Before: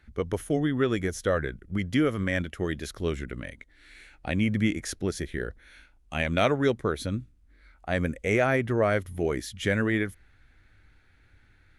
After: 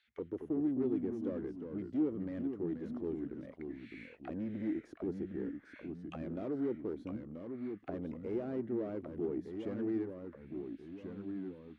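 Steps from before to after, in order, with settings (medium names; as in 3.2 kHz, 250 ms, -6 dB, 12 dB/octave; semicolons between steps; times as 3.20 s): valve stage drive 27 dB, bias 0.4; auto-wah 320–3600 Hz, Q 3, down, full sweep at -33.5 dBFS; ever faster or slower copies 202 ms, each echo -2 st, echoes 2, each echo -6 dB; trim +1 dB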